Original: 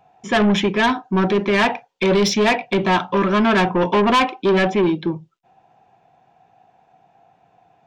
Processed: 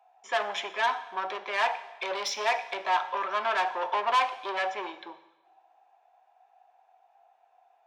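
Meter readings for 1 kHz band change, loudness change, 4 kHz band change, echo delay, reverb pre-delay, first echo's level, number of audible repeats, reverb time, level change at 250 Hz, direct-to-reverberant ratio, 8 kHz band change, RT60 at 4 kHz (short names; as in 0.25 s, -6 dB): -6.5 dB, -11.5 dB, -10.0 dB, none, 6 ms, none, none, 1.1 s, -32.0 dB, 11.0 dB, -10.0 dB, 1.0 s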